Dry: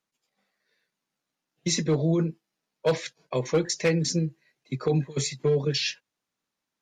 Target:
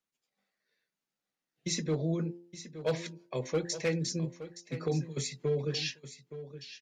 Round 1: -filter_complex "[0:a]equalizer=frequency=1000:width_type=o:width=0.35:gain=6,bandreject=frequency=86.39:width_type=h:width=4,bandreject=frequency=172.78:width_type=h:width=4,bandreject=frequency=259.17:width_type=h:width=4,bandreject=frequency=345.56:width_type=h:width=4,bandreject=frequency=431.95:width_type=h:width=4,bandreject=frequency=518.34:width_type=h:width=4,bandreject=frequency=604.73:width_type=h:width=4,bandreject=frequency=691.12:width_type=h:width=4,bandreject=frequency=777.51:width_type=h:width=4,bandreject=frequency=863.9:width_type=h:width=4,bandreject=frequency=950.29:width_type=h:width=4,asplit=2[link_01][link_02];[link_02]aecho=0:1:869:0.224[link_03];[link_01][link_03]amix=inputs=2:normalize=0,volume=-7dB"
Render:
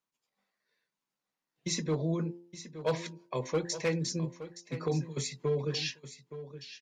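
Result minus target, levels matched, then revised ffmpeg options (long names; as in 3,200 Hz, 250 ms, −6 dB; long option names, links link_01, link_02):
1,000 Hz band +4.5 dB
-filter_complex "[0:a]equalizer=frequency=1000:width_type=o:width=0.35:gain=-3,bandreject=frequency=86.39:width_type=h:width=4,bandreject=frequency=172.78:width_type=h:width=4,bandreject=frequency=259.17:width_type=h:width=4,bandreject=frequency=345.56:width_type=h:width=4,bandreject=frequency=431.95:width_type=h:width=4,bandreject=frequency=518.34:width_type=h:width=4,bandreject=frequency=604.73:width_type=h:width=4,bandreject=frequency=691.12:width_type=h:width=4,bandreject=frequency=777.51:width_type=h:width=4,bandreject=frequency=863.9:width_type=h:width=4,bandreject=frequency=950.29:width_type=h:width=4,asplit=2[link_01][link_02];[link_02]aecho=0:1:869:0.224[link_03];[link_01][link_03]amix=inputs=2:normalize=0,volume=-7dB"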